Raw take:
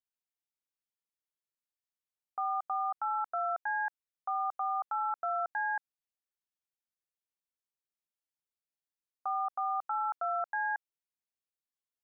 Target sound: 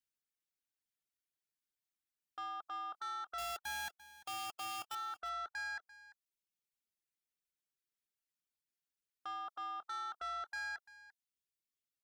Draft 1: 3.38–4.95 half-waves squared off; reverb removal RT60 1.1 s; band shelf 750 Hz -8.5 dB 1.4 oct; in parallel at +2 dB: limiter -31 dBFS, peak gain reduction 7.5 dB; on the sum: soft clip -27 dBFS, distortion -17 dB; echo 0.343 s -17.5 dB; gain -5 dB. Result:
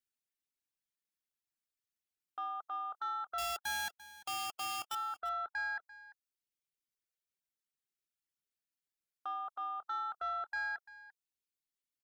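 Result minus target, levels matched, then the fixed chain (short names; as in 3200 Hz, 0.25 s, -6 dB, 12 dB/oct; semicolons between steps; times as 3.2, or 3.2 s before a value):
soft clip: distortion -7 dB
3.38–4.95 half-waves squared off; reverb removal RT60 1.1 s; band shelf 750 Hz -8.5 dB 1.4 oct; in parallel at +2 dB: limiter -31 dBFS, peak gain reduction 7.5 dB; on the sum: soft clip -34.5 dBFS, distortion -10 dB; echo 0.343 s -17.5 dB; gain -5 dB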